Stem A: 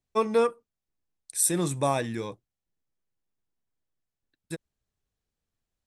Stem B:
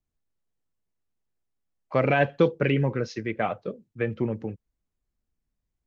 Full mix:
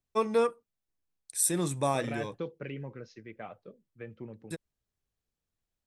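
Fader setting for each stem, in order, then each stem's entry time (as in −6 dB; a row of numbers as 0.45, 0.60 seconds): −3.0, −16.5 decibels; 0.00, 0.00 seconds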